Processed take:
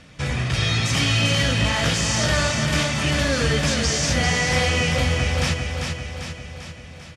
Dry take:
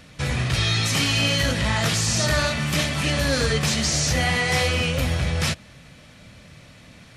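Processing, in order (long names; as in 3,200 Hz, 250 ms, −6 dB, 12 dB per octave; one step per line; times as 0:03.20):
low-pass filter 8,400 Hz 12 dB per octave
notch filter 4,100 Hz, Q 11
repeating echo 395 ms, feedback 56%, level −5 dB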